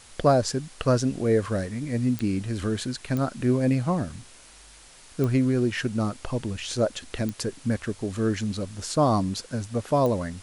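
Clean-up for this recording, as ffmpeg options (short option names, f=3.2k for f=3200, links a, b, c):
-af "adeclick=t=4,afftdn=nr=20:nf=-49"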